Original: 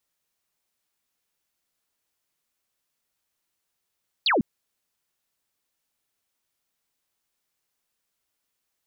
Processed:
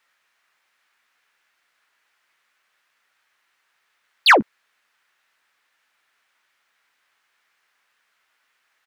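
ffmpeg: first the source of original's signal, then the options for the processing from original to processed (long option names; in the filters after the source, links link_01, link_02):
-f lavfi -i "aevalsrc='0.126*clip(t/0.002,0,1)*clip((0.15-t)/0.002,0,1)*sin(2*PI*4800*0.15/log(180/4800)*(exp(log(180/4800)*t/0.15)-1))':duration=0.15:sample_rate=44100"
-filter_complex "[0:a]equalizer=frequency=1700:width_type=o:width=1.8:gain=13,asplit=2[link_01][link_02];[link_02]highpass=frequency=720:poles=1,volume=15dB,asoftclip=type=tanh:threshold=-5dB[link_03];[link_01][link_03]amix=inputs=2:normalize=0,lowpass=frequency=3000:poles=1,volume=-6dB,asplit=2[link_04][link_05];[link_05]adelay=14,volume=-13dB[link_06];[link_04][link_06]amix=inputs=2:normalize=0"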